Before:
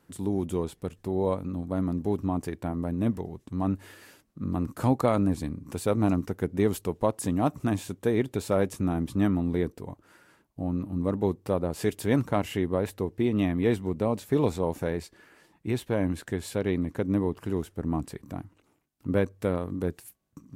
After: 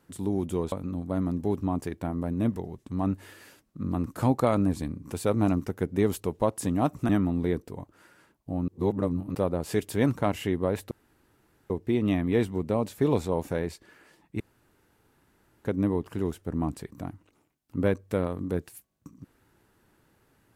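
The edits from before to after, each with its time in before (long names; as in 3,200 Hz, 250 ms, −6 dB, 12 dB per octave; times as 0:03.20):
0:00.72–0:01.33: remove
0:07.70–0:09.19: remove
0:10.78–0:11.45: reverse
0:13.01: splice in room tone 0.79 s
0:15.71–0:16.96: fill with room tone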